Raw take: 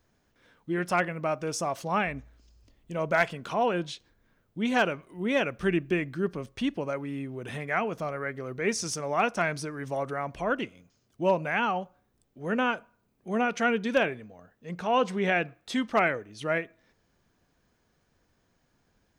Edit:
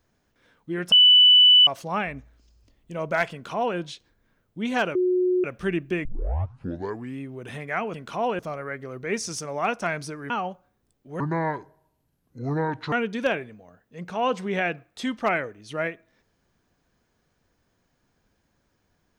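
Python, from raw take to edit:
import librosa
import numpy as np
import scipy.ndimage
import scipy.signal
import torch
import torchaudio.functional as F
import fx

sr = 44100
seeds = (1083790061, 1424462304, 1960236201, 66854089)

y = fx.edit(x, sr, fx.bleep(start_s=0.92, length_s=0.75, hz=2980.0, db=-10.5),
    fx.duplicate(start_s=3.32, length_s=0.45, to_s=7.94),
    fx.bleep(start_s=4.95, length_s=0.49, hz=364.0, db=-18.5),
    fx.tape_start(start_s=6.05, length_s=1.14),
    fx.cut(start_s=9.85, length_s=1.76),
    fx.speed_span(start_s=12.51, length_s=1.12, speed=0.65), tone=tone)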